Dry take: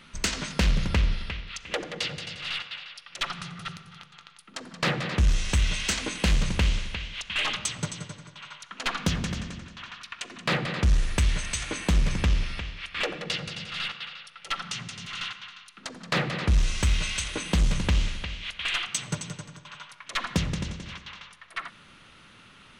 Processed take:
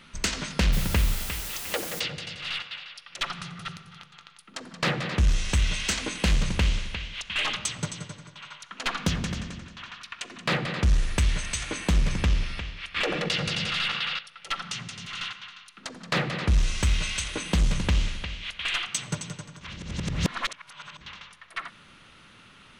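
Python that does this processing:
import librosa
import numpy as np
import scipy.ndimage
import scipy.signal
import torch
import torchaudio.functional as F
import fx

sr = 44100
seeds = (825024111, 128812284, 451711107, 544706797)

y = fx.quant_dither(x, sr, seeds[0], bits=6, dither='triangular', at=(0.72, 1.99), fade=0.02)
y = fx.env_flatten(y, sr, amount_pct=70, at=(12.96, 14.19))
y = fx.edit(y, sr, fx.reverse_span(start_s=19.61, length_s=1.4), tone=tone)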